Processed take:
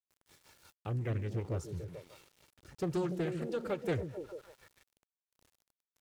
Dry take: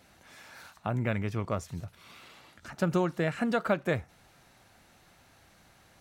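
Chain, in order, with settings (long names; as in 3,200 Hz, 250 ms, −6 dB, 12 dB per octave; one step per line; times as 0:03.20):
parametric band 1,400 Hz −9.5 dB 2.5 octaves
comb filter 2.2 ms, depth 70%
echo through a band-pass that steps 147 ms, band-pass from 200 Hz, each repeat 0.7 octaves, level −3 dB
rotating-speaker cabinet horn 5.5 Hz, later 1.2 Hz, at 0:01.85
centre clipping without the shift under −54 dBFS
highs frequency-modulated by the lows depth 0.45 ms
level −2.5 dB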